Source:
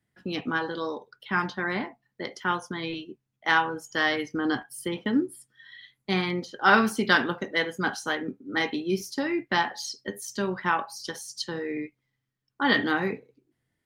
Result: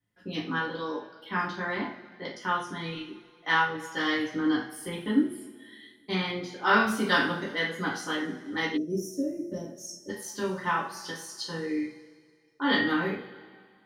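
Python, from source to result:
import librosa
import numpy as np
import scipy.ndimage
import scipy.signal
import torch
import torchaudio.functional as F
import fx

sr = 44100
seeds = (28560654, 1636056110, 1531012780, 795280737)

y = fx.rev_double_slope(x, sr, seeds[0], early_s=0.37, late_s=2.0, knee_db=-18, drr_db=-6.0)
y = fx.spec_box(y, sr, start_s=8.77, length_s=1.33, low_hz=670.0, high_hz=5300.0, gain_db=-30)
y = y * librosa.db_to_amplitude(-9.0)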